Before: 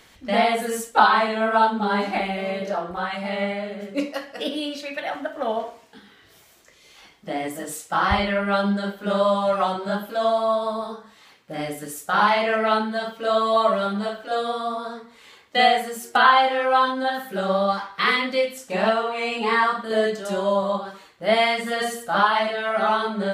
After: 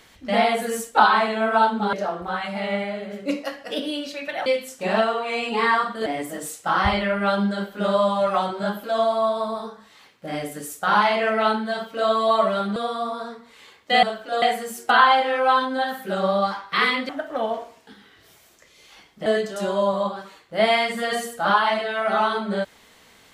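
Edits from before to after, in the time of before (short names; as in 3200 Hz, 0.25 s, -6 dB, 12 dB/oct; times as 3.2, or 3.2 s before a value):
1.93–2.62 cut
5.15–7.32 swap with 18.35–19.95
14.02–14.41 move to 15.68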